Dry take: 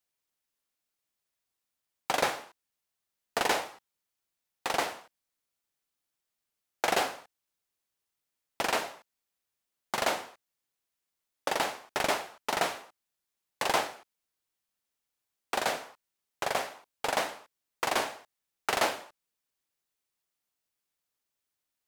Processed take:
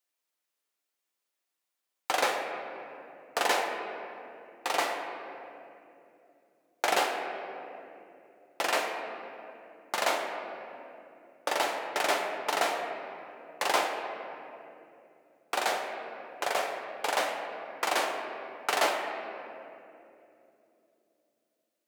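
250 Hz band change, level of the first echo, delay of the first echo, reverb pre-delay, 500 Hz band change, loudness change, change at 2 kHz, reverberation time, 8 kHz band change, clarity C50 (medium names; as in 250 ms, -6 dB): -0.5 dB, no echo, no echo, 5 ms, +2.0 dB, 0.0 dB, +2.0 dB, 2.9 s, +0.5 dB, 4.5 dB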